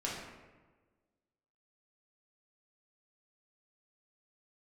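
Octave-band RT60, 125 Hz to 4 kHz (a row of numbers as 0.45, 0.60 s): 1.5, 1.5, 1.4, 1.2, 1.1, 0.75 s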